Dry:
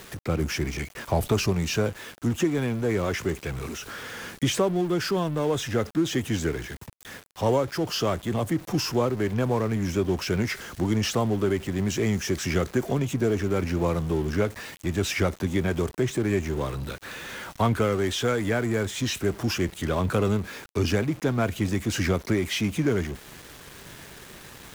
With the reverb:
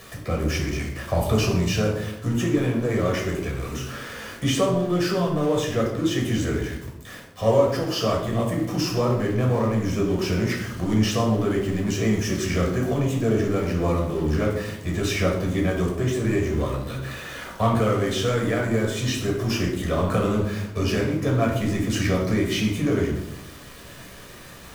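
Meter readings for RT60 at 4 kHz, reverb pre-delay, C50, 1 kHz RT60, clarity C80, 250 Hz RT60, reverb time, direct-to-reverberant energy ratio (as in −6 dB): 0.55 s, 11 ms, 5.0 dB, 0.75 s, 7.5 dB, 1.2 s, 0.85 s, −1.5 dB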